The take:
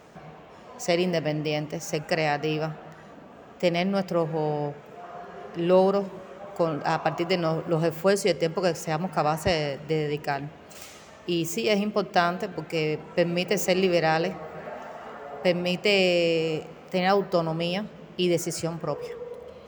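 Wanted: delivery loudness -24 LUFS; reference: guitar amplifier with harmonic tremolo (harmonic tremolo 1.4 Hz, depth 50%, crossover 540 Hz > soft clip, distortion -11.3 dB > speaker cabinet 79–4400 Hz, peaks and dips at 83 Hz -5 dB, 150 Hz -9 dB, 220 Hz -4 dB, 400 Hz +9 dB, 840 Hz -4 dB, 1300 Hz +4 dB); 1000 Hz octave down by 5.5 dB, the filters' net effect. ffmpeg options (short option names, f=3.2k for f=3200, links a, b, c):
-filter_complex "[0:a]equalizer=f=1k:t=o:g=-7,acrossover=split=540[a][b];[a]aeval=exprs='val(0)*(1-0.5/2+0.5/2*cos(2*PI*1.4*n/s))':c=same[c];[b]aeval=exprs='val(0)*(1-0.5/2-0.5/2*cos(2*PI*1.4*n/s))':c=same[d];[c][d]amix=inputs=2:normalize=0,asoftclip=threshold=-25dB,highpass=79,equalizer=f=83:t=q:w=4:g=-5,equalizer=f=150:t=q:w=4:g=-9,equalizer=f=220:t=q:w=4:g=-4,equalizer=f=400:t=q:w=4:g=9,equalizer=f=840:t=q:w=4:g=-4,equalizer=f=1.3k:t=q:w=4:g=4,lowpass=f=4.4k:w=0.5412,lowpass=f=4.4k:w=1.3066,volume=7dB"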